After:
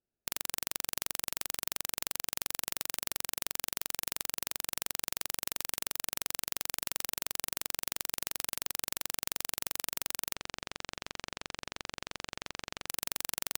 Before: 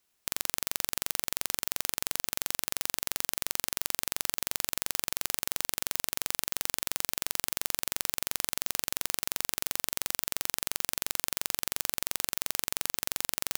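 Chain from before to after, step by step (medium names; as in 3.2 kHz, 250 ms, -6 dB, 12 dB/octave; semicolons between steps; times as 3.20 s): local Wiener filter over 41 samples; 10.33–12.86 s: distance through air 120 m; trim -2.5 dB; MP3 160 kbps 44.1 kHz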